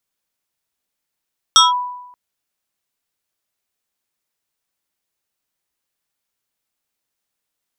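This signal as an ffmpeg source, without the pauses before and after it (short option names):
-f lavfi -i "aevalsrc='0.631*pow(10,-3*t/0.91)*sin(2*PI*988*t+2.5*clip(1-t/0.17,0,1)*sin(2*PI*2.33*988*t))':d=0.58:s=44100"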